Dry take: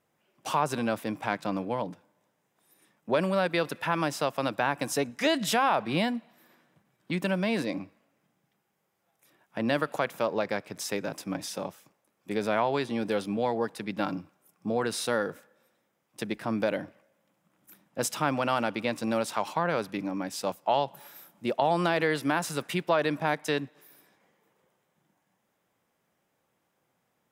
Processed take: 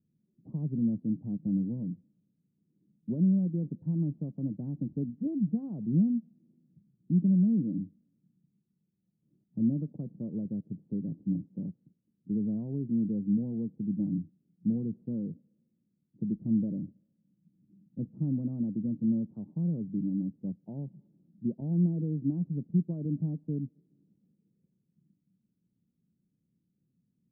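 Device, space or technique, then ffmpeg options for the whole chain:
the neighbour's flat through the wall: -af "lowpass=f=260:w=0.5412,lowpass=f=260:w=1.3066,equalizer=f=180:t=o:w=0.76:g=5.5,volume=2.5dB"

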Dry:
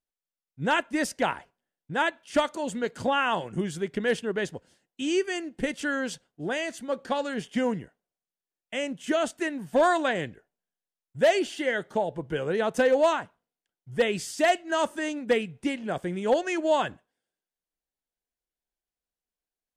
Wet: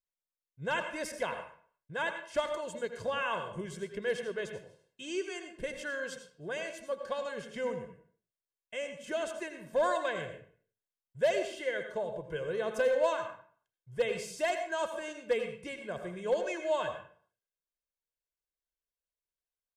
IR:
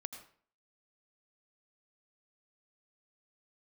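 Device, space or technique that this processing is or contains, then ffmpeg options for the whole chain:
microphone above a desk: -filter_complex "[0:a]aecho=1:1:1.9:0.7[a];[1:a]atrim=start_sample=2205[b];[a][b]afir=irnorm=-1:irlink=0,volume=-6.5dB"

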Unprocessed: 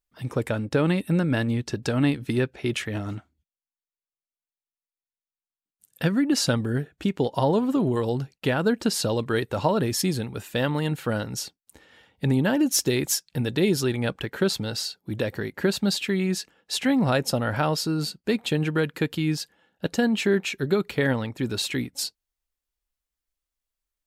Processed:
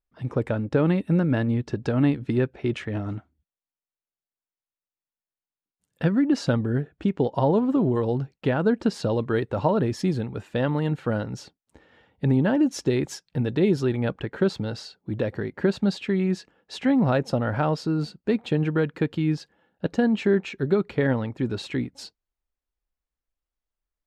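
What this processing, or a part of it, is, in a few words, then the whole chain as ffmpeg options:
through cloth: -af "lowpass=7.2k,highshelf=f=2.4k:g=-14,volume=1.5dB"

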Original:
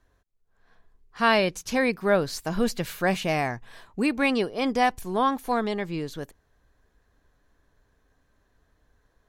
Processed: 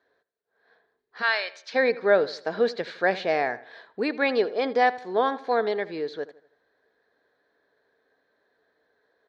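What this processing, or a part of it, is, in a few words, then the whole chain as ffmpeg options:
phone earpiece: -filter_complex "[0:a]highpass=360,equalizer=f=450:t=q:w=4:g=8,equalizer=f=650:t=q:w=4:g=3,equalizer=f=1.1k:t=q:w=4:g=-5,equalizer=f=1.7k:t=q:w=4:g=5,equalizer=f=2.8k:t=q:w=4:g=-8,equalizer=f=4.1k:t=q:w=4:g=5,lowpass=f=4.3k:w=0.5412,lowpass=f=4.3k:w=1.3066,asplit=3[a][b][c];[a]afade=t=out:st=1.21:d=0.02[d];[b]highpass=1.3k,afade=t=in:st=1.21:d=0.02,afade=t=out:st=1.74:d=0.02[e];[c]afade=t=in:st=1.74:d=0.02[f];[d][e][f]amix=inputs=3:normalize=0,asplit=2[g][h];[h]adelay=80,lowpass=f=3.7k:p=1,volume=-17dB,asplit=2[i][j];[j]adelay=80,lowpass=f=3.7k:p=1,volume=0.42,asplit=2[k][l];[l]adelay=80,lowpass=f=3.7k:p=1,volume=0.42,asplit=2[m][n];[n]adelay=80,lowpass=f=3.7k:p=1,volume=0.42[o];[g][i][k][m][o]amix=inputs=5:normalize=0"

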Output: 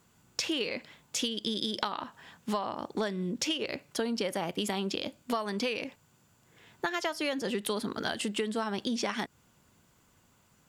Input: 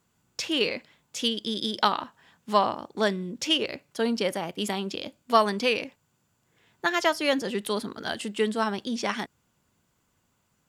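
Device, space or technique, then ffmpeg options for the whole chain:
serial compression, peaks first: -af "acompressor=threshold=-29dB:ratio=6,acompressor=threshold=-38dB:ratio=2,volume=6dB"

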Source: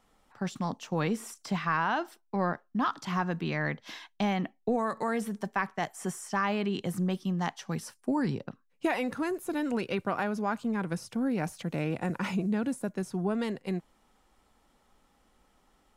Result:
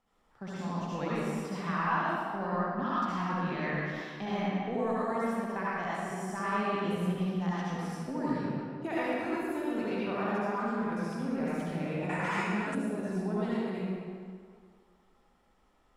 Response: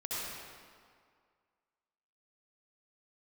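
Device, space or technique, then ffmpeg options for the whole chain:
swimming-pool hall: -filter_complex "[1:a]atrim=start_sample=2205[a];[0:a][a]afir=irnorm=-1:irlink=0,highshelf=f=5.1k:g=-7.5,asettb=1/sr,asplit=3[b][c][d];[b]atrim=end=12.094[e];[c]atrim=start=12.09:end=12.75,asetpts=PTS-STARTPTS,afade=t=in:d=0.004:c=qsin,afade=t=out:st=0.656:d=0.004:c=qsin,equalizer=f=250:t=o:w=1:g=-5,equalizer=f=1k:t=o:w=1:g=7,equalizer=f=2k:t=o:w=1:g=7,equalizer=f=8k:t=o:w=1:g=11[f];[d]atrim=start=12.746[g];[e][f]acrossfade=d=0.004:c1=hsin:c2=qsin[h];[h][g]acrossfade=d=0.004:c1=qsin:c2=hsin,volume=-4.5dB"

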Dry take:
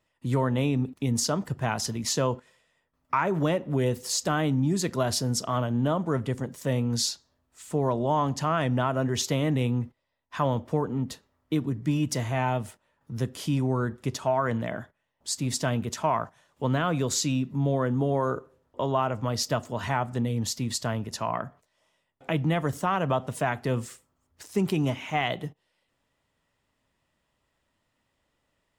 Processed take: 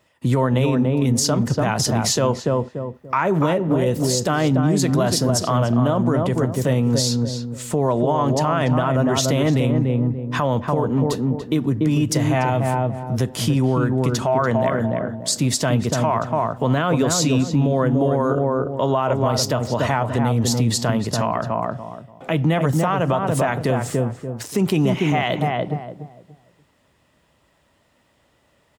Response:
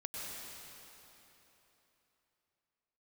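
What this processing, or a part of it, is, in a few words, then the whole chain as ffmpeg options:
mastering chain: -filter_complex "[0:a]highpass=53,equalizer=f=570:t=o:w=0.77:g=2,asplit=2[a][b];[b]adelay=289,lowpass=f=880:p=1,volume=-3dB,asplit=2[c][d];[d]adelay=289,lowpass=f=880:p=1,volume=0.29,asplit=2[e][f];[f]adelay=289,lowpass=f=880:p=1,volume=0.29,asplit=2[g][h];[h]adelay=289,lowpass=f=880:p=1,volume=0.29[i];[a][c][e][g][i]amix=inputs=5:normalize=0,acompressor=threshold=-30dB:ratio=2,alimiter=level_in=21dB:limit=-1dB:release=50:level=0:latency=1,volume=-8.5dB"

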